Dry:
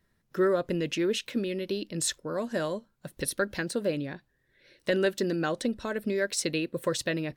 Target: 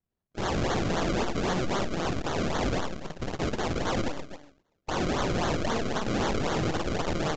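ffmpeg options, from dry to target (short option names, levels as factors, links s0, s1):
-filter_complex "[0:a]asettb=1/sr,asplit=3[s0][s1][s2];[s0]atrim=end=3.764[s3];[s1]atrim=start=3.76:end=4.92,asetpts=PTS-STARTPTS,afade=t=in:d=0.004:c=qsin,afade=t=out:st=1.156:d=0.004:c=qsin,highpass=260[s4];[s2]atrim=start=4.916[s5];[s3][s4]acrossfade=d=0.004:c1=hsin:c2=qsin[s6];[s6][s5]acrossfade=d=0.004:c1=qsin:c2=hsin,afwtdn=0.0141,aeval=exprs='0.168*(cos(1*acos(clip(val(0)/0.168,-1,1)))-cos(1*PI/2))+0.00668*(cos(3*acos(clip(val(0)/0.168,-1,1)))-cos(3*PI/2))+0.0376*(cos(4*acos(clip(val(0)/0.168,-1,1)))-cos(4*PI/2))+0.0335*(cos(8*acos(clip(val(0)/0.168,-1,1)))-cos(8*PI/2))':c=same,aecho=1:1:50|115|199.5|309.4|452.2:0.631|0.398|0.251|0.158|0.1,acrusher=samples=34:mix=1:aa=0.000001:lfo=1:lforange=34:lforate=3.8,aeval=exprs='(mod(12.6*val(0)+1,2)-1)/12.6':c=same,acrusher=bits=2:mode=log:mix=0:aa=0.000001,aresample=16000,aresample=44100"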